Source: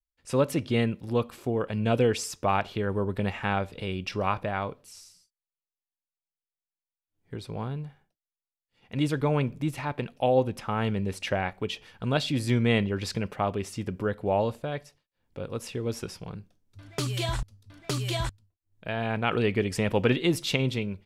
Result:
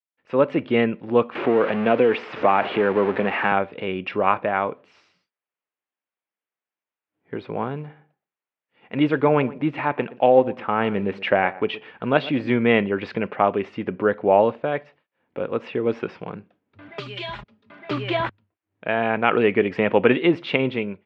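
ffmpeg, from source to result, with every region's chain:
-filter_complex "[0:a]asettb=1/sr,asplit=3[a][b][c];[a]atrim=end=1.354[d];[b]atrim=start=1.35:end=3.52,asetpts=PTS-STARTPTS,afade=t=in:d=0.004:c=qsin,afade=t=out:st=2.166:d=0.004:c=qsin,aeval=exprs='val(0)+0.5*0.0376*sgn(val(0))':c=same,acrossover=split=150|3800[e][f][g];[e]acompressor=threshold=-43dB:ratio=4[h];[f]acompressor=threshold=-22dB:ratio=4[i];[g]acompressor=threshold=-46dB:ratio=4[j];[h][i][j]amix=inputs=3:normalize=0[k];[c]atrim=start=3.516[l];[d][k]acrossfade=d=0.004:c1=hsin:c2=qsin[m];[m][l]acrossfade=d=0.004:c1=qsin:c2=hsin,asettb=1/sr,asplit=3[n][o][p];[n]atrim=end=7.754[q];[o]atrim=start=7.75:end=12.57,asetpts=PTS-STARTPTS,afade=t=in:d=0.004:c=qsin,afade=t=out:st=4.816:d=0.004:c=qsin,acrusher=bits=8:mode=log:mix=0:aa=0.000001,asplit=2[r][s];[s]adelay=120,lowpass=f=1.3k:p=1,volume=-17dB,asplit=2[t][u];[u]adelay=120,lowpass=f=1.3k:p=1,volume=0.22[v];[r][t][v]amix=inputs=3:normalize=0,atrim=end_sample=212562[w];[p]atrim=start=12.566[x];[q][w]acrossfade=d=0.004:c1=hsin:c2=qsin[y];[y][x]acrossfade=d=0.004:c1=qsin:c2=hsin,asettb=1/sr,asplit=3[z][aa][ab];[z]atrim=end=16.884[ac];[aa]atrim=start=16.88:end=17.91,asetpts=PTS-STARTPTS,afade=t=in:d=0.004:c=qsin,afade=t=out:st=1.026:d=0.004:c=qsin,acrossover=split=120|3000[ad][ae][af];[ae]acompressor=threshold=-47dB:ratio=3:attack=3.2:release=140:knee=2.83:detection=peak[ag];[ad][ag][af]amix=inputs=3:normalize=0,aecho=1:1:4.9:0.77,atrim=end_sample=45423[ah];[ab]atrim=start=17.906[ai];[ac][ah]acrossfade=d=0.004:c1=hsin:c2=qsin[aj];[aj][ai]acrossfade=d=0.004:c1=qsin:c2=hsin,lowpass=f=2.6k:w=0.5412,lowpass=f=2.6k:w=1.3066,dynaudnorm=f=220:g=3:m=11.5dB,highpass=250,volume=-1dB"

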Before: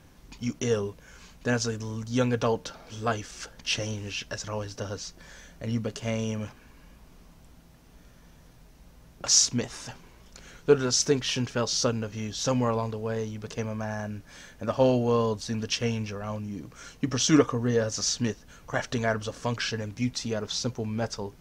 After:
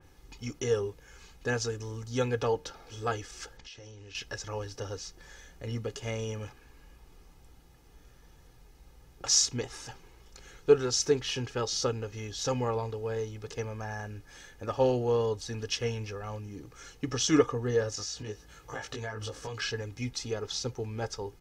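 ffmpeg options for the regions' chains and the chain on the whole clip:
-filter_complex "[0:a]asettb=1/sr,asplit=3[a][b][c];[a]atrim=end=3.574[d];[b]atrim=start=3.57:end=4.15,asetpts=PTS-STARTPTS,afade=t=in:d=0.004:c=qsin,afade=t=out:st=0.576:d=0.004:c=qsin,lowpass=f=7.3k:w=0.5412,lowpass=f=7.3k:w=1.3066,acompressor=threshold=-41dB:ratio=10:attack=3.2:release=140:knee=1:detection=peak[e];[c]atrim=start=4.146[f];[d][e]acrossfade=d=0.004:c1=hsin:c2=qsin[g];[g][f]acrossfade=d=0.004:c1=qsin:c2=hsin,asettb=1/sr,asplit=3[h][i][j];[h]atrim=end=17.954[k];[i]atrim=start=17.95:end=19.62,asetpts=PTS-STARTPTS,afade=t=in:d=0.004:c=qsin,afade=t=out:st=1.666:d=0.004:c=qsin,highpass=47,acompressor=threshold=-32dB:ratio=4:attack=3.2:release=140:knee=1:detection=peak,asplit=2[l][m];[m]adelay=19,volume=-2dB[n];[l][n]amix=inputs=2:normalize=0,atrim=end_sample=73647[o];[j]atrim=start=19.616[p];[k][o]acrossfade=d=0.004:c1=hsin:c2=qsin[q];[q][p]acrossfade=d=0.004:c1=qsin:c2=hsin,aecho=1:1:2.4:0.57,adynamicequalizer=threshold=0.0126:dfrequency=3100:dqfactor=0.7:tfrequency=3100:tqfactor=0.7:attack=5:release=100:ratio=0.375:range=1.5:mode=cutabove:tftype=highshelf,volume=-4.5dB"

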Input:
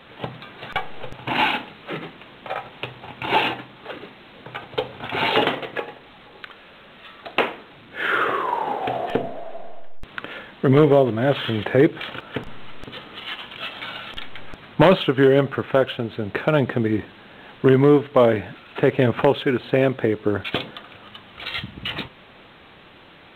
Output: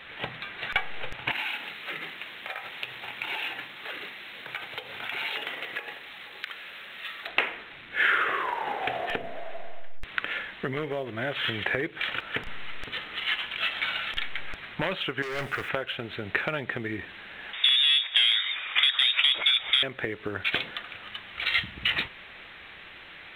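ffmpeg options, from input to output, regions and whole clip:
-filter_complex "[0:a]asettb=1/sr,asplit=3[a][b][c];[a]atrim=end=1.314[d];[b]atrim=start=1.31:end=7.28,asetpts=PTS-STARTPTS,afade=t=in:d=0.004:c=qsin,afade=t=out:st=5.966:d=0.004:c=qsin,aemphasis=mode=production:type=50kf,acompressor=threshold=-32dB:ratio=6:attack=3.2:release=140:knee=1:detection=peak,highpass=f=170:p=1[e];[c]atrim=start=7.276[f];[d][e]acrossfade=d=0.004:c1=hsin:c2=qsin[g];[g][f]acrossfade=d=0.004:c1=qsin:c2=hsin,asettb=1/sr,asplit=3[h][i][j];[h]atrim=end=15.224[k];[i]atrim=start=15.22:end=15.69,asetpts=PTS-STARTPTS,afade=t=in:d=0.004:c=qsin,afade=t=out:st=0.466:d=0.004:c=qsin,acrusher=bits=7:mix=0:aa=0.5,asoftclip=type=hard:threshold=-22dB[l];[j]atrim=start=15.686[m];[k][l]acrossfade=d=0.004:c1=hsin:c2=qsin[n];[n][m]acrossfade=d=0.004:c1=qsin:c2=hsin,asettb=1/sr,asplit=3[o][p][q];[o]atrim=end=17.534[r];[p]atrim=start=17.53:end=19.83,asetpts=PTS-STARTPTS,afade=t=in:d=0.004:c=qsin,afade=t=out:st=2.296:d=0.004:c=qsin,asoftclip=type=hard:threshold=-16.5dB,lowpass=f=3.2k:t=q:w=0.5098,lowpass=f=3.2k:t=q:w=0.6013,lowpass=f=3.2k:t=q:w=0.9,lowpass=f=3.2k:t=q:w=2.563,afreqshift=-3800,acontrast=74[s];[q]atrim=start=19.826[t];[r][s]acrossfade=d=0.004:c1=hsin:c2=qsin[u];[u][t]acrossfade=d=0.004:c1=qsin:c2=hsin,acompressor=threshold=-23dB:ratio=5,equalizer=f=125:t=o:w=1:g=-7,equalizer=f=250:t=o:w=1:g=-7,equalizer=f=500:t=o:w=1:g=-4,equalizer=f=1k:t=o:w=1:g=-4,equalizer=f=2k:t=o:w=1:g=8"

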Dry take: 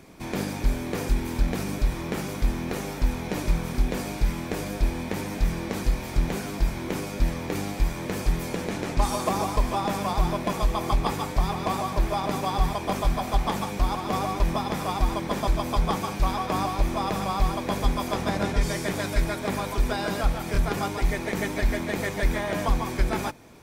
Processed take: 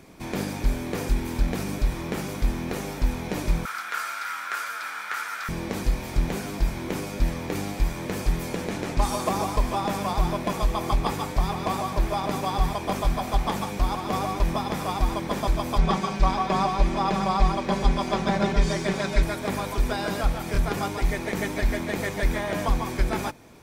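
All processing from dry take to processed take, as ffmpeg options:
-filter_complex "[0:a]asettb=1/sr,asplit=3[a][b][c];[a]atrim=end=3.654[d];[b]atrim=start=3.65:end=5.49,asetpts=PTS-STARTPTS,afade=t=in:d=0.004:c=qsin,afade=t=out:st=1.836:d=0.004:c=qsin,highpass=f=1.4k:t=q:w=10,afreqshift=-38[e];[c]atrim=start=5.486[f];[d][e]acrossfade=d=0.004:c1=hsin:c2=qsin[g];[g][f]acrossfade=d=0.004:c1=qsin:c2=hsin,asettb=1/sr,asplit=3[h][i][j];[h]atrim=end=15.784[k];[i]atrim=start=15.78:end=19.23,asetpts=PTS-STARTPTS,afade=t=in:d=0.004:c=qsin,afade=t=out:st=3.446:d=0.004:c=qsin,lowpass=6.4k,aecho=1:1:5.2:0.82,atrim=end_sample=152145,aeval=exprs='sgn(val(0))*max(abs(val(0))-0.00237,0)':c=same[l];[j]atrim=start=19.226[m];[k][l]acrossfade=d=0.004:c1=hsin:c2=qsin[n];[n][m]acrossfade=d=0.004:c1=qsin:c2=hsin"

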